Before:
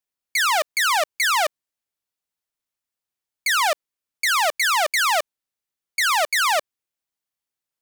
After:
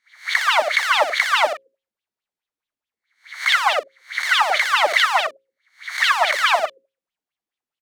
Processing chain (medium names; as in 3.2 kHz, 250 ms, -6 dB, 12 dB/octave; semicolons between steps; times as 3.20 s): reverse spectral sustain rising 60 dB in 0.40 s; treble shelf 6.5 kHz -10.5 dB; hum notches 60/120/180/240/300/360/420/480/540 Hz; on a send: loudspeakers at several distances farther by 21 m -1 dB, 35 m -12 dB; on the sum: sweeping bell 4.7 Hz 230–3600 Hz +15 dB; trim -6.5 dB